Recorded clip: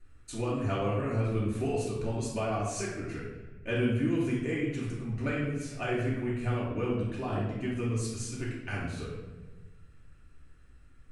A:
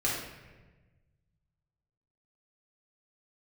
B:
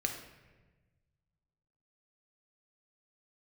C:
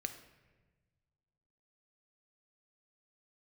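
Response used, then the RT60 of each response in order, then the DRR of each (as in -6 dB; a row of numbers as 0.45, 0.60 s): A; 1.3, 1.3, 1.3 s; -6.5, 2.5, 7.0 dB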